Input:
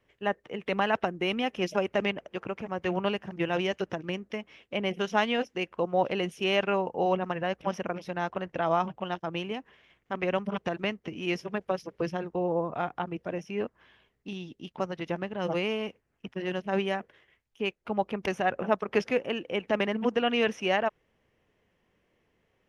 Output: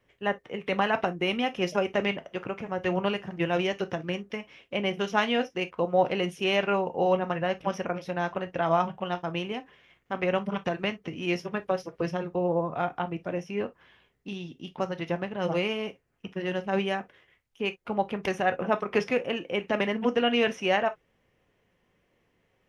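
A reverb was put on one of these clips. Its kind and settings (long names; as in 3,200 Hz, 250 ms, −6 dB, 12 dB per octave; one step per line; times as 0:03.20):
reverb whose tail is shaped and stops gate 80 ms falling, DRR 8 dB
level +1 dB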